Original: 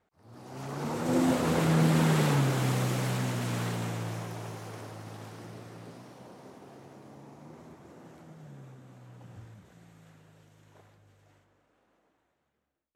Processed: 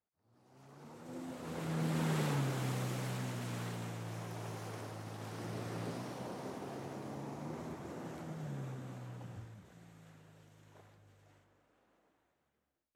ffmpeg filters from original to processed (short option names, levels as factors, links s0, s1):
-af "volume=1.88,afade=t=in:st=1.32:d=0.84:silence=0.281838,afade=t=in:st=4.03:d=0.61:silence=0.473151,afade=t=in:st=5.17:d=0.64:silence=0.398107,afade=t=out:st=8.87:d=0.62:silence=0.398107"